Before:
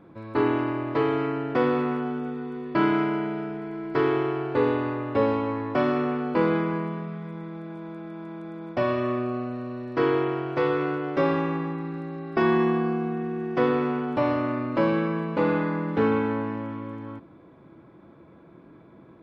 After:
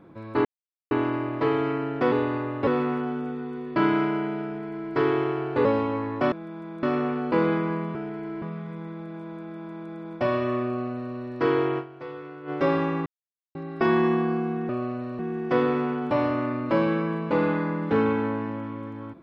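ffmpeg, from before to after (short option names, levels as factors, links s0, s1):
-filter_complex "[0:a]asplit=15[s0][s1][s2][s3][s4][s5][s6][s7][s8][s9][s10][s11][s12][s13][s14];[s0]atrim=end=0.45,asetpts=PTS-STARTPTS,afade=t=out:st=0.446:d=0.004:c=hsin,apad=pad_dur=0.46[s15];[s1]atrim=start=0.45:end=1.662,asetpts=PTS-STARTPTS,afade=t=in:d=0.004:c=hsin[s16];[s2]atrim=start=4.638:end=5.192[s17];[s3]atrim=start=1.658:end=4.642[s18];[s4]atrim=start=5.188:end=5.862[s19];[s5]atrim=start=7.948:end=8.462[s20];[s6]atrim=start=5.858:end=6.982[s21];[s7]atrim=start=3.428:end=3.902[s22];[s8]atrim=start=6.978:end=10.65,asetpts=PTS-STARTPTS,afade=t=out:st=3.372:d=0.3:c=exp:silence=0.199526[s23];[s9]atrim=start=10.65:end=10.76,asetpts=PTS-STARTPTS,volume=0.2[s24];[s10]atrim=start=10.76:end=11.62,asetpts=PTS-STARTPTS,afade=t=in:d=0.3:c=exp:silence=0.199526,afade=t=out:st=0.856:d=0.004:c=hsin[s25];[s11]atrim=start=11.62:end=12.11,asetpts=PTS-STARTPTS,volume=0[s26];[s12]atrim=start=12.11:end=13.252,asetpts=PTS-STARTPTS,afade=t=in:d=0.004:c=hsin[s27];[s13]atrim=start=9.208:end=9.712[s28];[s14]atrim=start=13.248[s29];[s15][s16]concat=n=2:v=0:a=1[s30];[s30][s17]acrossfade=d=0.004:c1=hsin:c2=hsin[s31];[s31][s18]acrossfade=d=0.004:c1=hsin:c2=hsin[s32];[s32][s19]acrossfade=d=0.004:c1=hsin:c2=hsin[s33];[s33][s20]acrossfade=d=0.004:c1=hsin:c2=hsin[s34];[s34][s21]acrossfade=d=0.004:c1=hsin:c2=hsin[s35];[s35][s22]acrossfade=d=0.004:c1=hsin:c2=hsin[s36];[s23][s24][s25][s26][s27]concat=n=5:v=0:a=1[s37];[s36][s37]acrossfade=d=0.004:c1=hsin:c2=hsin[s38];[s38][s28]acrossfade=d=0.004:c1=hsin:c2=hsin[s39];[s39][s29]acrossfade=d=0.004:c1=hsin:c2=hsin"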